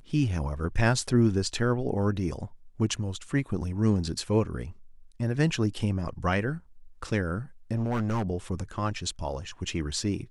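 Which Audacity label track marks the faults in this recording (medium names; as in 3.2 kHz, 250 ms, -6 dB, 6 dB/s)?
7.750000	8.230000	clipped -24 dBFS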